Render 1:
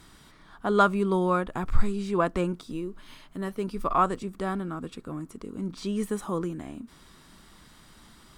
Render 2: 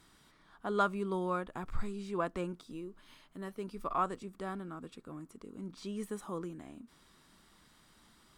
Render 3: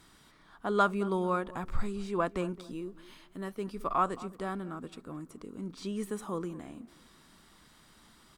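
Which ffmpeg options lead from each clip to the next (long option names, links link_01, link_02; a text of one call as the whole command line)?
ffmpeg -i in.wav -af "lowshelf=frequency=140:gain=-5.5,volume=-9dB" out.wav
ffmpeg -i in.wav -filter_complex "[0:a]asplit=2[link_01][link_02];[link_02]adelay=219,lowpass=frequency=1500:poles=1,volume=-17.5dB,asplit=2[link_03][link_04];[link_04]adelay=219,lowpass=frequency=1500:poles=1,volume=0.34,asplit=2[link_05][link_06];[link_06]adelay=219,lowpass=frequency=1500:poles=1,volume=0.34[link_07];[link_01][link_03][link_05][link_07]amix=inputs=4:normalize=0,volume=4dB" out.wav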